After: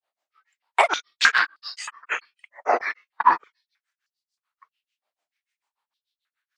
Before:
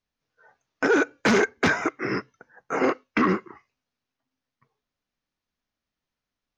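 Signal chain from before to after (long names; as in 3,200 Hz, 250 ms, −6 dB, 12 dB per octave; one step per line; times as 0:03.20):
granular cloud 147 ms, grains 6.8 per second, pitch spread up and down by 7 semitones
high-pass on a step sequencer 3.2 Hz 670–4,900 Hz
level +4.5 dB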